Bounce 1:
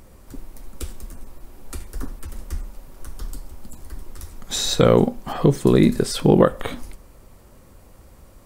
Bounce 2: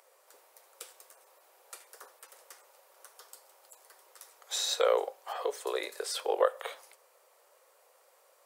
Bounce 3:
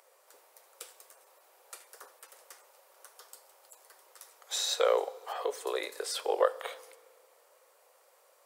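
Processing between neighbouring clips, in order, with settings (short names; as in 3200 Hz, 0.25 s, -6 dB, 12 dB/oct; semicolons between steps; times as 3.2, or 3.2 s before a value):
steep high-pass 460 Hz 48 dB/oct; gain -8 dB
FDN reverb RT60 2 s, low-frequency decay 1.3×, high-frequency decay 0.85×, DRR 19 dB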